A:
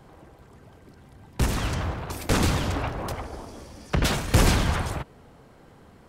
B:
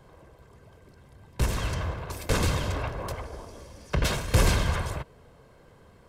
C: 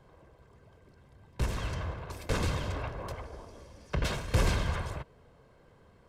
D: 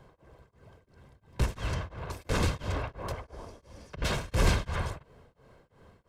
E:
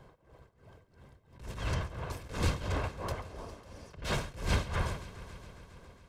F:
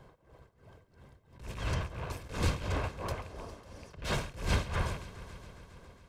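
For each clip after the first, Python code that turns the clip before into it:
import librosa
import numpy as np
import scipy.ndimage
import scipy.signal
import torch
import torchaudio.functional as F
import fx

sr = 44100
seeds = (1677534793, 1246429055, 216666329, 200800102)

y1 = x + 0.39 * np.pad(x, (int(1.9 * sr / 1000.0), 0))[:len(x)]
y1 = y1 * 10.0 ** (-3.5 / 20.0)
y2 = fx.high_shelf(y1, sr, hz=8200.0, db=-9.0)
y2 = y2 * 10.0 ** (-5.0 / 20.0)
y3 = y2 * np.abs(np.cos(np.pi * 2.9 * np.arange(len(y2)) / sr))
y3 = y3 * 10.0 ** (4.0 / 20.0)
y4 = fx.echo_heads(y3, sr, ms=137, heads='first and third', feedback_pct=63, wet_db=-19.5)
y4 = fx.attack_slew(y4, sr, db_per_s=120.0)
y5 = fx.rattle_buzz(y4, sr, strikes_db=-40.0, level_db=-39.0)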